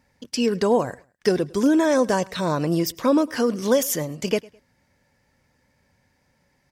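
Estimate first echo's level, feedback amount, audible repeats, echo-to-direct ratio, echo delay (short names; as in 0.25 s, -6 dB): -23.5 dB, 33%, 2, -23.0 dB, 0.105 s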